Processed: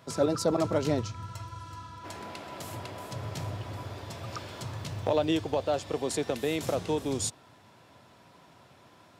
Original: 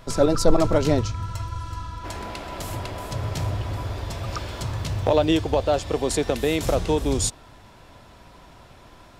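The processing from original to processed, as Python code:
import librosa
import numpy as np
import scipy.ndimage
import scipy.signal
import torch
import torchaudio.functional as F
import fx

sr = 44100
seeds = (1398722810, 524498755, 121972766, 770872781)

y = scipy.signal.sosfilt(scipy.signal.butter(4, 100.0, 'highpass', fs=sr, output='sos'), x)
y = y * 10.0 ** (-7.0 / 20.0)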